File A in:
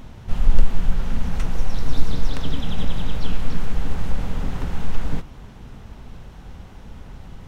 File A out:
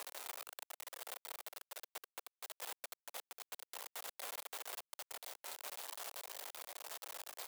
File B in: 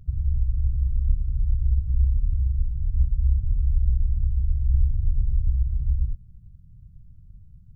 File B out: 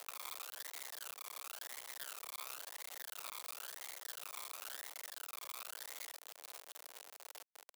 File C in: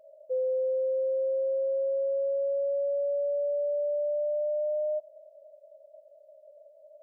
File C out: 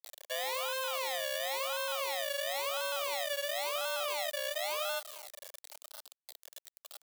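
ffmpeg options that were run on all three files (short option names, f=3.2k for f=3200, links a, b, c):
-af "aecho=1:1:532|1064:0.0668|0.0154,acrusher=samples=30:mix=1:aa=0.000001:lfo=1:lforange=18:lforate=0.96,asoftclip=type=hard:threshold=-15dB,acompressor=threshold=-27dB:ratio=10,aresample=8000,aresample=44100,aeval=exprs='max(val(0),0)':c=same,acrusher=bits=7:mix=0:aa=0.000001,crystalizer=i=2.5:c=0,highpass=f=550:w=0.5412,highpass=f=550:w=1.3066"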